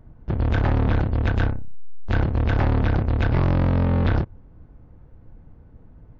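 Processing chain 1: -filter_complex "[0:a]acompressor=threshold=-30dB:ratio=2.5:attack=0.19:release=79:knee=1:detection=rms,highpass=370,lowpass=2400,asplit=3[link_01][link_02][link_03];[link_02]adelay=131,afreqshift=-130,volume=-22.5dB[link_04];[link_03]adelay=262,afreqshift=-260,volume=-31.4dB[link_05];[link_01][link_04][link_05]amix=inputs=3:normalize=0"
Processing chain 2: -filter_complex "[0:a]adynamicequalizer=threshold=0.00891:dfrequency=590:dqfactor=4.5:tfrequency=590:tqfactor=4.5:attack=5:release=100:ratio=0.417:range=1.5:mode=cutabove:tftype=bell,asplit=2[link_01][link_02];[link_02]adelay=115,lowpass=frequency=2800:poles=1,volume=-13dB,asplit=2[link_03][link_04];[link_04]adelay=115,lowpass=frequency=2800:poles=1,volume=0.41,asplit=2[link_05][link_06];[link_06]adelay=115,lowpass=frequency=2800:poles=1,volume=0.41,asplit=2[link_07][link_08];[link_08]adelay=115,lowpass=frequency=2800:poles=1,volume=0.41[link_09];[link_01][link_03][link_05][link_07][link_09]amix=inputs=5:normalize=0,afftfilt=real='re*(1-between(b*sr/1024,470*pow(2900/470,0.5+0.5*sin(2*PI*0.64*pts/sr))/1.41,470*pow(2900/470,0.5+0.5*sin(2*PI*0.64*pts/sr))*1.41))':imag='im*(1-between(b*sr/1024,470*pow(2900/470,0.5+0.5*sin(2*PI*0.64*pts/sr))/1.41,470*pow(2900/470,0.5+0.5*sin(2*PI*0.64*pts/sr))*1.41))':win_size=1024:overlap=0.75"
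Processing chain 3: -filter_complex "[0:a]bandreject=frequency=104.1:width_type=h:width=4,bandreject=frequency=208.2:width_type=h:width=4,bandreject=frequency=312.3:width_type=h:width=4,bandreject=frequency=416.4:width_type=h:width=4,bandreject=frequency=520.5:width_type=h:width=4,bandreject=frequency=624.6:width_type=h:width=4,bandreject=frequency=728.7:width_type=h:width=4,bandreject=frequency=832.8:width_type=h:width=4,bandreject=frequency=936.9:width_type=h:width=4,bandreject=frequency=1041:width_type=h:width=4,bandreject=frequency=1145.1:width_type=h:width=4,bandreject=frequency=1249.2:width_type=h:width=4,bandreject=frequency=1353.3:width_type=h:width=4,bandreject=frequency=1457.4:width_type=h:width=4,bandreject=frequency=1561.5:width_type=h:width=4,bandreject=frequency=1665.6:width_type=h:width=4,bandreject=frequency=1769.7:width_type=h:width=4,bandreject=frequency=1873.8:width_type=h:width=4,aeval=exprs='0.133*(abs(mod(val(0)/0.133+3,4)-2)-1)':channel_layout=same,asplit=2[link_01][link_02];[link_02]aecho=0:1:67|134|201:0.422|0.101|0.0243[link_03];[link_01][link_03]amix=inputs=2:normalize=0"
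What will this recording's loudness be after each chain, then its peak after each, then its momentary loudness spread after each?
−40.5, −22.5, −23.5 LKFS; −23.0, −9.5, −14.0 dBFS; 6, 8, 8 LU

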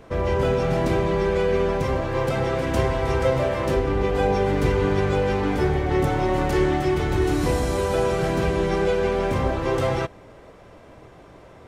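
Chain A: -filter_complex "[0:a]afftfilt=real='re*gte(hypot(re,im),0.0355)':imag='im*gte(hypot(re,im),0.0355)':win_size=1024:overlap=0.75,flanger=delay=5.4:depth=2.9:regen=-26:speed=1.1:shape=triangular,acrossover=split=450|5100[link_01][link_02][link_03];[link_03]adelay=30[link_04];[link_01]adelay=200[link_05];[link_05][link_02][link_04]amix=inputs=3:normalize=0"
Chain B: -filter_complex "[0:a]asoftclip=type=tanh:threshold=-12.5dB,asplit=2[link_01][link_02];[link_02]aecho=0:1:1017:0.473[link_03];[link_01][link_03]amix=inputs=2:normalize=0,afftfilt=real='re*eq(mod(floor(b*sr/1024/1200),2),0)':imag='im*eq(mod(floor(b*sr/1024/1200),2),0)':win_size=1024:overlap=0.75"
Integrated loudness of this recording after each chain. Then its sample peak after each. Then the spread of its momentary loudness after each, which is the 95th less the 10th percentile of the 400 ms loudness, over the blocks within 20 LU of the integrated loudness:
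−27.5, −23.0 LKFS; −13.0, −11.0 dBFS; 3, 5 LU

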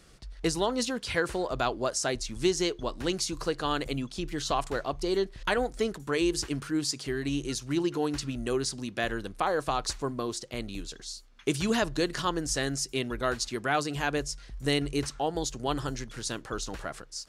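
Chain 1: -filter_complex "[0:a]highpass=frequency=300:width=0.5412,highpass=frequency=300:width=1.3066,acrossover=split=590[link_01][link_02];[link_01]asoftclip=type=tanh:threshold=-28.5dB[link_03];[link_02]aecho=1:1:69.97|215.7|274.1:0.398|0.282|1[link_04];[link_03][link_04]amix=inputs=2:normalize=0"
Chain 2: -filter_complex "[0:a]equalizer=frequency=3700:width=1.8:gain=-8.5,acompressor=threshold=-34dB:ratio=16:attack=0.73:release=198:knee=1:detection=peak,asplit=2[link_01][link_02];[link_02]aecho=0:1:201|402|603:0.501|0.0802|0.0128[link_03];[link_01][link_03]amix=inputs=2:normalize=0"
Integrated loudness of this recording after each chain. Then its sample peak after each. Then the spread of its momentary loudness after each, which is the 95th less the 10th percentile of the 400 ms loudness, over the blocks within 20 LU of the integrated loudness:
−30.0, −41.0 LKFS; −12.5, −26.0 dBFS; 7, 3 LU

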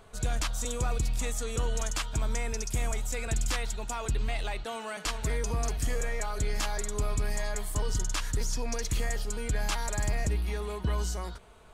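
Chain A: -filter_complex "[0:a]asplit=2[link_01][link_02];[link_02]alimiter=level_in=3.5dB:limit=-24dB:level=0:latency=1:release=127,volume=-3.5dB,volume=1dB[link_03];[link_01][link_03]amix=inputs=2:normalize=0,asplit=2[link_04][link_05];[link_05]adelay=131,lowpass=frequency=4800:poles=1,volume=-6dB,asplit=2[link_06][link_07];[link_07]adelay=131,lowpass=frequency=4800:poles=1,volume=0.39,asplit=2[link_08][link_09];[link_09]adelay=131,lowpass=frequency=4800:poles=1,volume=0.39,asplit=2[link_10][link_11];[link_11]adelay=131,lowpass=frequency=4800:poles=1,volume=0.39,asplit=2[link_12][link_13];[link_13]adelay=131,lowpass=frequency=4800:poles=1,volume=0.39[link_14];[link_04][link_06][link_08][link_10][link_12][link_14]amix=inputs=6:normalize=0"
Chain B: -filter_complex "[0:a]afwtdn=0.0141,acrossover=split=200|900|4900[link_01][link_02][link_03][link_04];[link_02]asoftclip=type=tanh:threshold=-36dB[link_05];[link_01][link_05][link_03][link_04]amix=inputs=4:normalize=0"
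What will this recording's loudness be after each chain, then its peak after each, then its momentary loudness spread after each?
−28.0, −34.5 LKFS; −14.0, −19.0 dBFS; 3, 5 LU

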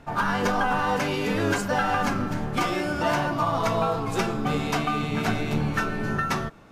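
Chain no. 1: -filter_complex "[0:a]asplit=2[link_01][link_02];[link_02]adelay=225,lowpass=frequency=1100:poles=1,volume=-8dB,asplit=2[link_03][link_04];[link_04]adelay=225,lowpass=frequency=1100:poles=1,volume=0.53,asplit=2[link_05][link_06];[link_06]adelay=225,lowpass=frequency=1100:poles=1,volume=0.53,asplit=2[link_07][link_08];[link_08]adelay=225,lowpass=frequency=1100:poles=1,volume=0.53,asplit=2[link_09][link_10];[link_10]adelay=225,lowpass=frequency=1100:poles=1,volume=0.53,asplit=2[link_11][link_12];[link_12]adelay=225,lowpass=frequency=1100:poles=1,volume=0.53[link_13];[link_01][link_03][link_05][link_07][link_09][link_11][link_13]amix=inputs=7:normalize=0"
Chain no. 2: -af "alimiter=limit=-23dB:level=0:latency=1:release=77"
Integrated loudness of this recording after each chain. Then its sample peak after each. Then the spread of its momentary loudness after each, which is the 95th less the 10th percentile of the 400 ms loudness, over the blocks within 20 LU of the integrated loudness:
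−25.0, −32.0 LKFS; −10.5, −23.0 dBFS; 3, 1 LU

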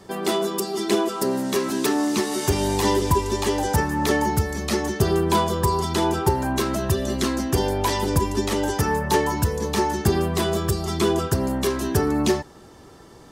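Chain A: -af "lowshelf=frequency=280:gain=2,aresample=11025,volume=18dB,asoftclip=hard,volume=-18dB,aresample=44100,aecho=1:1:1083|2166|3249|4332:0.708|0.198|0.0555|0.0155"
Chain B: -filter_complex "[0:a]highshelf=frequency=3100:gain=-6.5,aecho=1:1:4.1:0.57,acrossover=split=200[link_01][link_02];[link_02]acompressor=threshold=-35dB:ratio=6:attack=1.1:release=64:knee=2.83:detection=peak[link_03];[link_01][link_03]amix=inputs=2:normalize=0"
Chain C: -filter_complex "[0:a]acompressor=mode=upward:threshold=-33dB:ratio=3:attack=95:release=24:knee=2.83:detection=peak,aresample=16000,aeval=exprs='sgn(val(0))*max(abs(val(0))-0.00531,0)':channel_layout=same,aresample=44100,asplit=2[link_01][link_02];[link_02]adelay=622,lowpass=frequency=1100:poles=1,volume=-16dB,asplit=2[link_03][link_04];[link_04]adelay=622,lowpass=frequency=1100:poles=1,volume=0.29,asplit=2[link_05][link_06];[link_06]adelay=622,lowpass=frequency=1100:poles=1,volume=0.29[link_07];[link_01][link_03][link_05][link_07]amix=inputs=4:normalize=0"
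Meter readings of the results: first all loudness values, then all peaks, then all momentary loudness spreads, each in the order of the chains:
−22.0, −30.0, −23.0 LKFS; −11.5, −13.0, −5.0 dBFS; 3, 5, 4 LU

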